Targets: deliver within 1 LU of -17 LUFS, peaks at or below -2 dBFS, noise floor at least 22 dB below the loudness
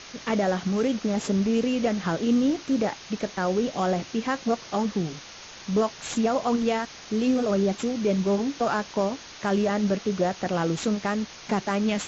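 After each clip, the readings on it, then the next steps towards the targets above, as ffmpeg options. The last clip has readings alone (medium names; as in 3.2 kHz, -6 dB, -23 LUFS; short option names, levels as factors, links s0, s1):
noise floor -44 dBFS; noise floor target -48 dBFS; loudness -26.0 LUFS; peak level -12.0 dBFS; loudness target -17.0 LUFS
-> -af "afftdn=nr=6:nf=-44"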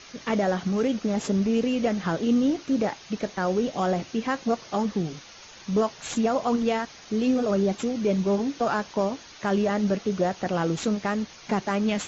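noise floor -47 dBFS; noise floor target -48 dBFS
-> -af "afftdn=nr=6:nf=-47"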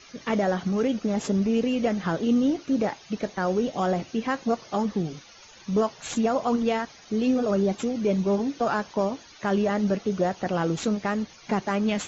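noise floor -50 dBFS; loudness -26.0 LUFS; peak level -12.5 dBFS; loudness target -17.0 LUFS
-> -af "volume=2.82"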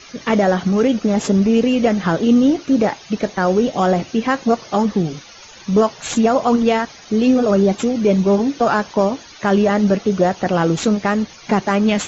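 loudness -17.0 LUFS; peak level -3.5 dBFS; noise floor -41 dBFS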